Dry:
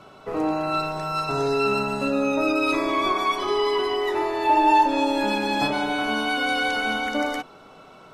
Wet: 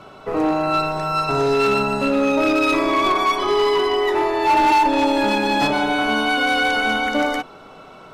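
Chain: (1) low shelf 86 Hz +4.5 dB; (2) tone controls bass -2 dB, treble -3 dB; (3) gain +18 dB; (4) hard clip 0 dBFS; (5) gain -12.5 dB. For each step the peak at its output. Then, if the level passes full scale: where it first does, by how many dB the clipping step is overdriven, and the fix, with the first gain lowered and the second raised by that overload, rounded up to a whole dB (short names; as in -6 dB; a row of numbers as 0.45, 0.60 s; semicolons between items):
-8.5, -8.5, +9.5, 0.0, -12.5 dBFS; step 3, 9.5 dB; step 3 +8 dB, step 5 -2.5 dB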